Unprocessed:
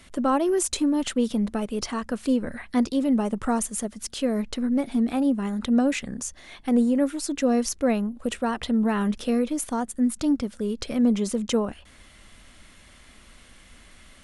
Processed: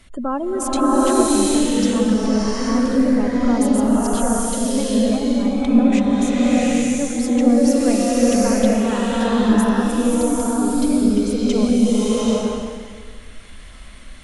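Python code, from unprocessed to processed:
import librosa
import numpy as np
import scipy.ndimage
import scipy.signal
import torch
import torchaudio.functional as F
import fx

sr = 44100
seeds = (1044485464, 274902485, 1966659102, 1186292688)

y = fx.spec_gate(x, sr, threshold_db=-30, keep='strong')
y = fx.low_shelf(y, sr, hz=63.0, db=10.5)
y = fx.rev_bloom(y, sr, seeds[0], attack_ms=820, drr_db=-8.5)
y = y * librosa.db_to_amplitude(-1.5)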